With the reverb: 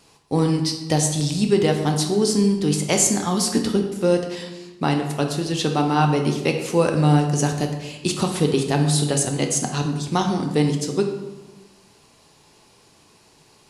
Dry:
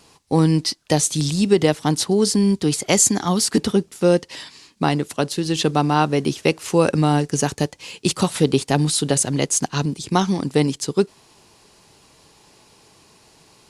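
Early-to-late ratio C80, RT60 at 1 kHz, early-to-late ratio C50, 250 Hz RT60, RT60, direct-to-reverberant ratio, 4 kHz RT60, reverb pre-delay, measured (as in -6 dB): 8.5 dB, 1.1 s, 6.0 dB, 1.4 s, 1.2 s, 3.0 dB, 0.75 s, 7 ms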